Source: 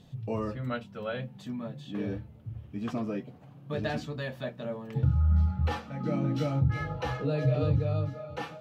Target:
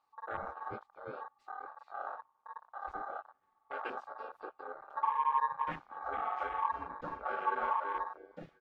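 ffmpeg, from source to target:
ffmpeg -i in.wav -filter_complex "[0:a]asplit=2[link_01][link_02];[link_02]asetrate=37084,aresample=44100,atempo=1.18921,volume=0dB[link_03];[link_01][link_03]amix=inputs=2:normalize=0,aeval=exprs='val(0)*sin(2*PI*1000*n/s)':channel_layout=same,afwtdn=0.0251,volume=-8dB" out.wav

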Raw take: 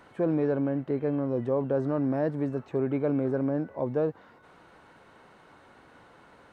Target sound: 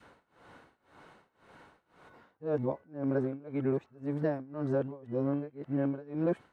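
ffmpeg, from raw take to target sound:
ffmpeg -i in.wav -af "areverse,tremolo=f=1.9:d=0.94,adynamicequalizer=threshold=0.00708:dfrequency=570:dqfactor=0.84:tfrequency=570:tqfactor=0.84:attack=5:release=100:ratio=0.375:range=2:mode=cutabove:tftype=bell" out.wav

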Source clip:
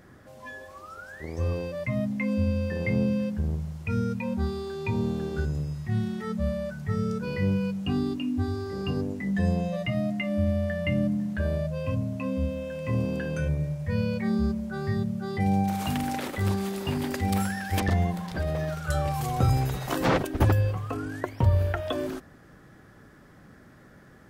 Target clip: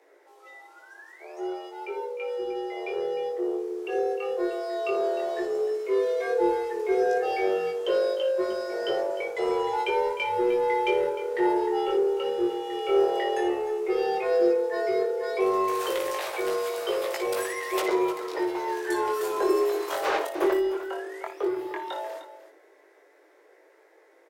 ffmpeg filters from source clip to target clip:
ffmpeg -i in.wav -filter_complex "[0:a]dynaudnorm=framelen=840:gausssize=11:maxgain=11.5dB,afreqshift=280,asplit=2[link_01][link_02];[link_02]asoftclip=type=tanh:threshold=-18dB,volume=-5dB[link_03];[link_01][link_03]amix=inputs=2:normalize=0,flanger=delay=17:depth=5.9:speed=0.12,asplit=2[link_04][link_05];[link_05]aecho=0:1:58|305:0.299|0.211[link_06];[link_04][link_06]amix=inputs=2:normalize=0,volume=-7.5dB" out.wav

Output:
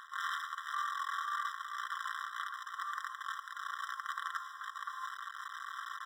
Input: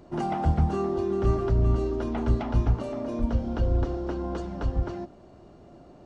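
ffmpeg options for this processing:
ffmpeg -i in.wav -af "acrusher=bits=5:dc=4:mix=0:aa=0.000001,alimiter=limit=-22.5dB:level=0:latency=1:release=45,aemphasis=mode=reproduction:type=75kf,areverse,acompressor=threshold=-44dB:ratio=5,areverse,lowshelf=frequency=550:width_type=q:width=3:gain=-12,aecho=1:1:4.4:0.5,afftfilt=real='re*eq(mod(floor(b*sr/1024/1000),2),1)':imag='im*eq(mod(floor(b*sr/1024/1000),2),1)':win_size=1024:overlap=0.75,volume=16.5dB" out.wav

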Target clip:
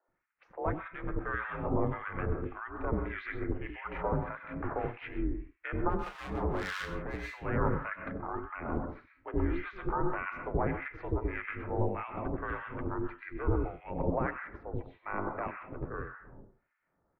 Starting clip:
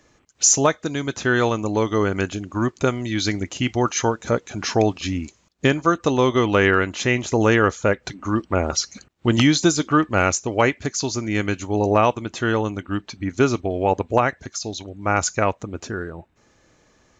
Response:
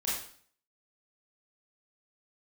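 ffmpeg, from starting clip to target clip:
-filter_complex "[0:a]agate=range=-7dB:threshold=-47dB:ratio=16:detection=peak,dynaudnorm=framelen=240:gausssize=11:maxgain=11.5dB,alimiter=limit=-10dB:level=0:latency=1:release=34,highpass=frequency=230:width_type=q:width=0.5412,highpass=frequency=230:width_type=q:width=1.307,lowpass=frequency=2200:width_type=q:width=0.5176,lowpass=frequency=2200:width_type=q:width=0.7071,lowpass=frequency=2200:width_type=q:width=1.932,afreqshift=-130,aeval=exprs='val(0)*sin(2*PI*180*n/s)':channel_layout=same,asettb=1/sr,asplit=3[link_01][link_02][link_03];[link_01]atrim=end=5.894[link_04];[link_02]atrim=start=5.89:end=7.2,asetpts=PTS-STARTPTS,afade=type=in:duration=0.004:curve=qsin,afade=type=out:start_time=1.306:duration=0.004:curve=qsin,volume=22dB,asoftclip=hard,volume=-22dB[link_05];[link_03]atrim=start=7.196[link_06];[link_04][link_05]acrossfade=duration=0.004:curve1=hsin:curve2=qsin[link_07];[link_07][link_06]acrossfade=duration=0.004:curve1=qsin:curve2=hsin,acrossover=split=470[link_08][link_09];[link_08]adelay=80[link_10];[link_10][link_09]amix=inputs=2:normalize=0,asplit=2[link_11][link_12];[1:a]atrim=start_sample=2205,asetrate=52920,aresample=44100,adelay=97[link_13];[link_12][link_13]afir=irnorm=-1:irlink=0,volume=-8.5dB[link_14];[link_11][link_14]amix=inputs=2:normalize=0,acrossover=split=1300[link_15][link_16];[link_15]aeval=exprs='val(0)*(1-1/2+1/2*cos(2*PI*1.7*n/s))':channel_layout=same[link_17];[link_16]aeval=exprs='val(0)*(1-1/2-1/2*cos(2*PI*1.7*n/s))':channel_layout=same[link_18];[link_17][link_18]amix=inputs=2:normalize=0,volume=-3dB"

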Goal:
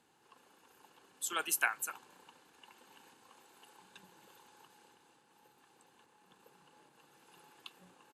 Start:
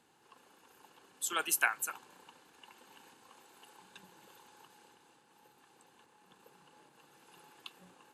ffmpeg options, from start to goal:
ffmpeg -i in.wav -af "aresample=32000,aresample=44100,volume=-2dB" out.wav

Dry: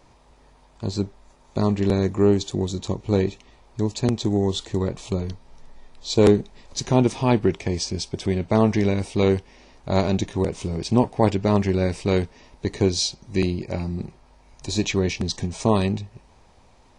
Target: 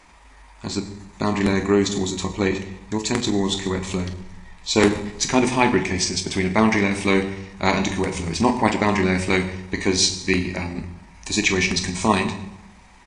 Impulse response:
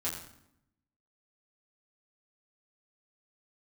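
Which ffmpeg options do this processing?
-filter_complex "[0:a]equalizer=frequency=125:width_type=o:width=1:gain=-8,equalizer=frequency=250:width_type=o:width=1:gain=4,equalizer=frequency=500:width_type=o:width=1:gain=-6,equalizer=frequency=1000:width_type=o:width=1:gain=4,equalizer=frequency=2000:width_type=o:width=1:gain=12,equalizer=frequency=8000:width_type=o:width=1:gain=6,asplit=2[link_01][link_02];[1:a]atrim=start_sample=2205,asetrate=27783,aresample=44100,highshelf=frequency=6900:gain=6[link_03];[link_02][link_03]afir=irnorm=-1:irlink=0,volume=-8.5dB[link_04];[link_01][link_04]amix=inputs=2:normalize=0,atempo=1.3,volume=-2dB"

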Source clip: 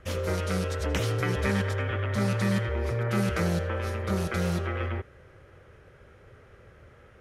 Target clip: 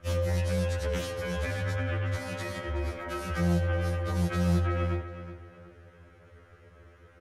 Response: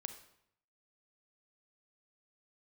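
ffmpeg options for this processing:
-filter_complex "[0:a]alimiter=limit=-20.5dB:level=0:latency=1:release=11,asplit=2[link_01][link_02];[link_02]adelay=371,lowpass=frequency=4500:poles=1,volume=-12dB,asplit=2[link_03][link_04];[link_04]adelay=371,lowpass=frequency=4500:poles=1,volume=0.36,asplit=2[link_05][link_06];[link_06]adelay=371,lowpass=frequency=4500:poles=1,volume=0.36,asplit=2[link_07][link_08];[link_08]adelay=371,lowpass=frequency=4500:poles=1,volume=0.36[link_09];[link_01][link_03][link_05][link_07][link_09]amix=inputs=5:normalize=0,afftfilt=real='re*2*eq(mod(b,4),0)':imag='im*2*eq(mod(b,4),0)':win_size=2048:overlap=0.75"

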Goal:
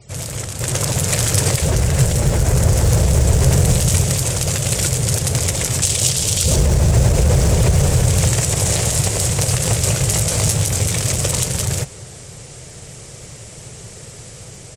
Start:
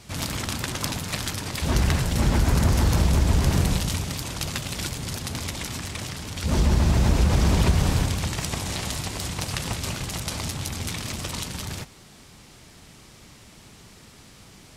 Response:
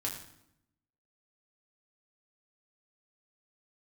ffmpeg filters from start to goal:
-filter_complex "[0:a]asettb=1/sr,asplit=3[link_01][link_02][link_03];[link_01]atrim=end=5.824[link_04];[link_02]atrim=start=5.82:end=6.56,asetpts=PTS-STARTPTS,afade=type=in:duration=0.004:curve=qsin,afade=type=out:start_time=0.736:duration=0.004:curve=qsin,highshelf=frequency=2500:width_type=q:width=1.5:gain=7.5[link_05];[link_03]atrim=start=6.556[link_06];[link_04][link_05]acrossfade=duration=0.004:curve1=hsin:curve2=qsin[link_07];[link_07][link_06]acrossfade=duration=0.004:curve1=qsin:curve2=hsin,asplit=2[link_08][link_09];[link_09]acrusher=bits=2:mode=log:mix=0:aa=0.000001,volume=-7.5dB[link_10];[link_08][link_10]amix=inputs=2:normalize=0,alimiter=limit=-14.5dB:level=0:latency=1:release=53,asplit=3[link_11][link_12][link_13];[link_11]afade=type=out:start_time=0.6:duration=0.02[link_14];[link_12]acontrast=35,afade=type=in:start_time=0.6:duration=0.02,afade=type=out:start_time=1.54:duration=0.02[link_15];[link_13]afade=type=in:start_time=1.54:duration=0.02[link_16];[link_14][link_15][link_16]amix=inputs=3:normalize=0,asettb=1/sr,asplit=3[link_17][link_18][link_19];[link_17]atrim=end=10.044[link_20];[link_18]atrim=start=10.04:end=10.86,asetpts=PTS-STARTPTS,afade=type=in:duration=0.004:curve=qsin,afade=type=out:start_time=0.816:duration=0.004:curve=qsin,asplit=2[link_21][link_22];[link_22]adelay=19,volume=-7dB[link_23];[link_21][link_23]amix=inputs=2:normalize=0,atrim=end_sample=36162[link_24];[link_19]atrim=start=10.856[link_25];[link_20][link_24]acrossfade=duration=0.004:curve1=hsin:curve2=qsin[link_26];[link_26][link_25]acrossfade=duration=0.004:curve1=qsin:curve2=hsin,asplit=2[link_27][link_28];[link_28]adelay=345,lowpass=frequency=2000:poles=1,volume=-21.5dB,asplit=2[link_29][link_30];[link_30]adelay=345,lowpass=frequency=2000:poles=1,volume=0.41,asplit=2[link_31][link_32];[link_32]adelay=345,lowpass=frequency=2000:poles=1,volume=0.41[link_33];[link_29][link_31][link_33]amix=inputs=3:normalize=0[link_34];[link_27][link_34]amix=inputs=2:normalize=0,dynaudnorm=framelen=170:gausssize=13:maxgain=9dB,afftfilt=real='re*gte(hypot(re,im),0.00501)':imag='im*gte(hypot(re,im),0.00501)':win_size=1024:overlap=0.75,equalizer=frequency=125:width_type=o:width=1:gain=10,equalizer=frequency=250:width_type=o:width=1:gain=-10,equalizer=frequency=500:width_type=o:width=1:gain=11,equalizer=frequency=1000:width_type=o:width=1:gain=-5,equalizer=frequency=4000:width_type=o:width=1:gain=-4,equalizer=frequency=8000:width_type=o:width=1:gain=11,volume=-3.5dB"

